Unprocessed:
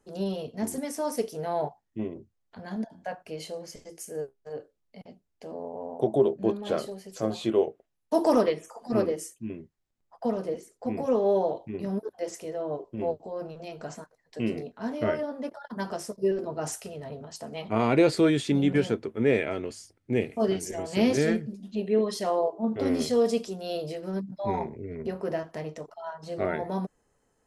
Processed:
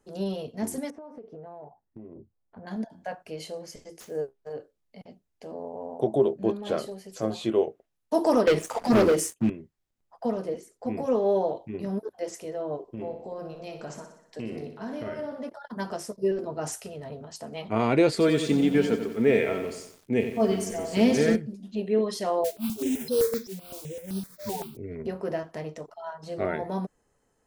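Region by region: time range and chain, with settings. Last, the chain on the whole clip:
0.90–2.67 s: low-pass 1.1 kHz + compression 16:1, threshold -39 dBFS
4.00–4.52 s: median filter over 5 samples + peaking EQ 580 Hz +3.5 dB 2.3 oct
8.47–9.50 s: waveshaping leveller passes 3 + three bands compressed up and down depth 40%
12.82–15.49 s: compression 5:1, threshold -31 dBFS + feedback delay 61 ms, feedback 56%, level -8 dB
18.11–21.36 s: comb 4.4 ms, depth 37% + bit-crushed delay 90 ms, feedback 55%, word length 8-bit, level -8.5 dB
22.44–24.77 s: spectral contrast enhancement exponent 2.7 + modulation noise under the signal 11 dB + stepped phaser 7.8 Hz 310–7100 Hz
whole clip: none

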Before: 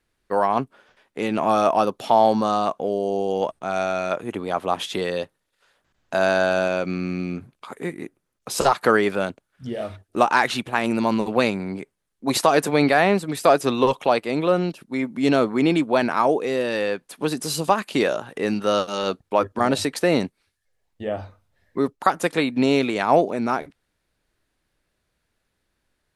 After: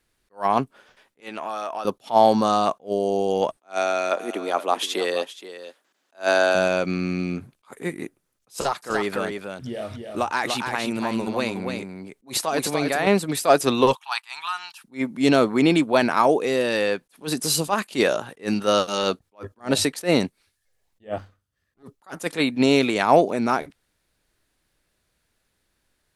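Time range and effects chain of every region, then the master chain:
1.20–1.85 s: high-pass 1.4 kHz 6 dB/octave + treble shelf 2.8 kHz -9.5 dB + compression 4:1, threshold -27 dBFS
3.57–6.55 s: high-pass 260 Hz 24 dB/octave + delay 473 ms -14.5 dB
8.53–13.07 s: compression 1.5:1, threshold -34 dBFS + delay 292 ms -5.5 dB
13.95–14.84 s: elliptic high-pass 870 Hz + band-stop 2.1 kHz, Q 9.4
21.18–21.83 s: comb filter that takes the minimum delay 0.64 ms + upward expansion, over -40 dBFS
whole clip: treble shelf 3.9 kHz +6 dB; attacks held to a fixed rise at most 300 dB/s; trim +1 dB

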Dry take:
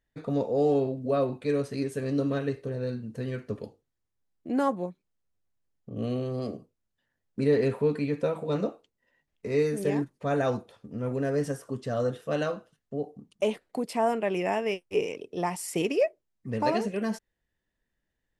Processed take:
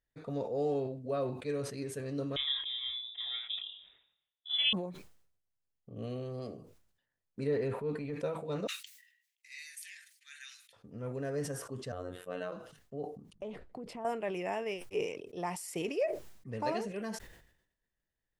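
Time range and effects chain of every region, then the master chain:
2.36–4.73 s: high-pass 57 Hz + doubling 29 ms -3 dB + frequency inversion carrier 3.7 kHz
7.47–8.16 s: peaking EQ 6.7 kHz -6 dB 2.4 oct + transient shaper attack -7 dB, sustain +1 dB
8.67–10.73 s: steep high-pass 1.8 kHz 48 dB/octave + treble shelf 4.3 kHz +6 dB
11.92–12.52 s: peaking EQ 5.5 kHz -13.5 dB 0.71 oct + robot voice 90.1 Hz
13.33–14.05 s: RIAA curve playback + compression 3:1, threshold -33 dBFS + loudspeaker Doppler distortion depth 0.11 ms
whole clip: peaking EQ 240 Hz -4 dB 0.77 oct; decay stretcher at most 78 dB/s; trim -7.5 dB

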